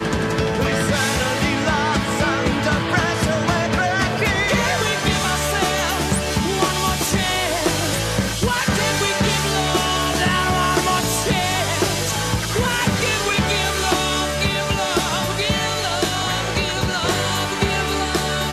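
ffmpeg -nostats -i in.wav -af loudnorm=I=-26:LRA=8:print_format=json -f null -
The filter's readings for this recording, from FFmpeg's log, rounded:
"input_i" : "-19.3",
"input_tp" : "-5.0",
"input_lra" : "1.7",
"input_thresh" : "-29.3",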